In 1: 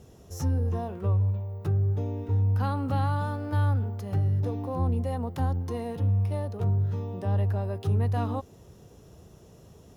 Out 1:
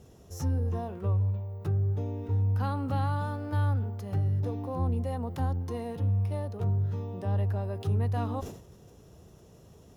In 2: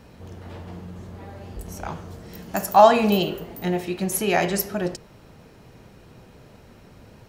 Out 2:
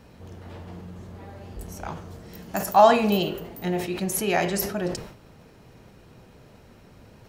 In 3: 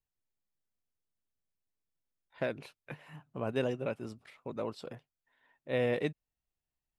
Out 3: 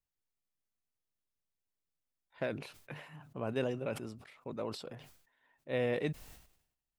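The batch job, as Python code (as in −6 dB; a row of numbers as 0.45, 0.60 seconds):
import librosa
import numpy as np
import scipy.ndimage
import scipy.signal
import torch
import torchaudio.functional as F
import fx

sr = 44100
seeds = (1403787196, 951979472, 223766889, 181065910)

y = fx.sustainer(x, sr, db_per_s=83.0)
y = F.gain(torch.from_numpy(y), -2.5).numpy()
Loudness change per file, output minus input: −2.5, −2.0, −3.0 LU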